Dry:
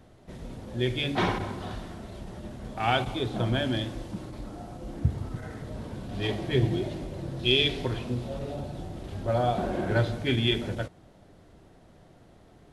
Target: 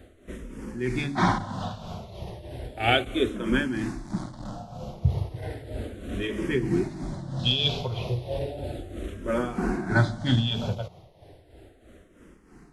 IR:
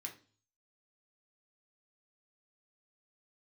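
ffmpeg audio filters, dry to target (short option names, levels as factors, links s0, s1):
-filter_complex "[0:a]asettb=1/sr,asplit=3[s0][s1][s2];[s0]atrim=end=4.054[s3];[s1]atrim=start=4.05:end=4.52,asetpts=PTS-STARTPTS,afade=t=in:d=0.004:c=qsin,afade=t=out:st=0.466:d=0.004:c=qsin,aeval=exprs='0.0708*(cos(1*acos(clip(val(0)/0.0708,-1,1)))-cos(1*PI/2))+0.00708*(cos(8*acos(clip(val(0)/0.0708,-1,1)))-cos(8*PI/2))':c=same[s4];[s2]atrim=start=4.516[s5];[s3][s4]acrossfade=d=0.004:c1=hsin:c2=qsin[s6];[s6][s5]acrossfade=d=0.004:c1=qsin:c2=hsin,tremolo=f=3.1:d=0.61,asplit=2[s7][s8];[s8]afreqshift=-0.34[s9];[s7][s9]amix=inputs=2:normalize=1,volume=2.51"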